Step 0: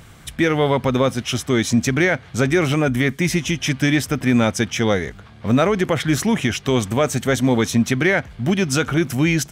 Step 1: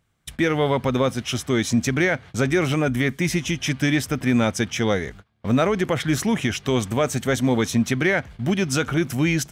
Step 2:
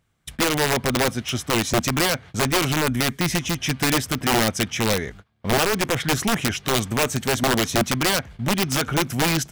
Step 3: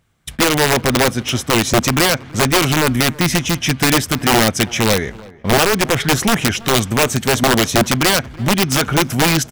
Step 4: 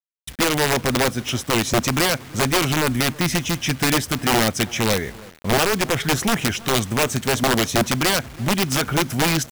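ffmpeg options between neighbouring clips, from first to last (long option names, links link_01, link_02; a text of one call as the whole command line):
ffmpeg -i in.wav -af "agate=range=-23dB:threshold=-36dB:ratio=16:detection=peak,volume=-3dB" out.wav
ffmpeg -i in.wav -af "aeval=exprs='(mod(4.73*val(0)+1,2)-1)/4.73':channel_layout=same" out.wav
ffmpeg -i in.wav -filter_complex "[0:a]asplit=2[link_01][link_02];[link_02]adelay=327,lowpass=frequency=1600:poles=1,volume=-21dB,asplit=2[link_03][link_04];[link_04]adelay=327,lowpass=frequency=1600:poles=1,volume=0.41,asplit=2[link_05][link_06];[link_06]adelay=327,lowpass=frequency=1600:poles=1,volume=0.41[link_07];[link_01][link_03][link_05][link_07]amix=inputs=4:normalize=0,volume=6.5dB" out.wav
ffmpeg -i in.wav -af "acrusher=bits=5:mix=0:aa=0.000001,volume=-5dB" out.wav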